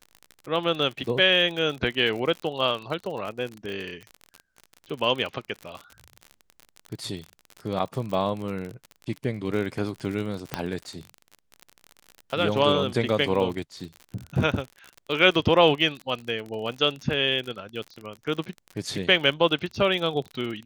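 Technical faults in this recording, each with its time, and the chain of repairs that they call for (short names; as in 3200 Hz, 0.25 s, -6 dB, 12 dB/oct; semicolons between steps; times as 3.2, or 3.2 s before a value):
crackle 48/s -31 dBFS
10.54 pop -11 dBFS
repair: de-click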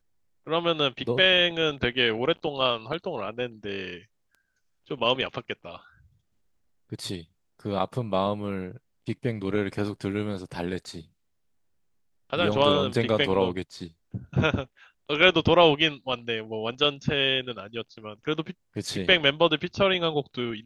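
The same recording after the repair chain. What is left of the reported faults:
none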